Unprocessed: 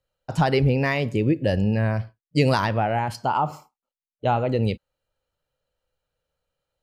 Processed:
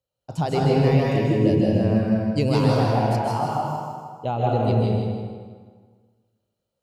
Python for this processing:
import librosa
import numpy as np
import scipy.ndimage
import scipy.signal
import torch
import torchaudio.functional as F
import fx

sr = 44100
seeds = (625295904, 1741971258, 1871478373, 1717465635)

y = scipy.signal.sosfilt(scipy.signal.butter(2, 70.0, 'highpass', fs=sr, output='sos'), x)
y = fx.peak_eq(y, sr, hz=1700.0, db=-10.0, octaves=1.1)
y = fx.echo_feedback(y, sr, ms=158, feedback_pct=41, wet_db=-6.0)
y = fx.rev_plate(y, sr, seeds[0], rt60_s=1.6, hf_ratio=0.65, predelay_ms=120, drr_db=-2.5)
y = y * librosa.db_to_amplitude(-3.5)